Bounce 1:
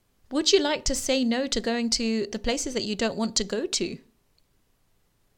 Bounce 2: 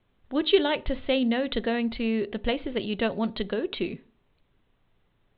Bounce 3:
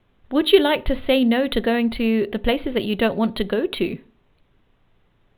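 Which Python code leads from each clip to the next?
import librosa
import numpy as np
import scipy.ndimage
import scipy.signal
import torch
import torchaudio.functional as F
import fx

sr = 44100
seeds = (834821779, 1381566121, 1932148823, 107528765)

y1 = scipy.signal.sosfilt(scipy.signal.butter(16, 3800.0, 'lowpass', fs=sr, output='sos'), x)
y2 = np.interp(np.arange(len(y1)), np.arange(len(y1))[::3], y1[::3])
y2 = y2 * 10.0 ** (7.0 / 20.0)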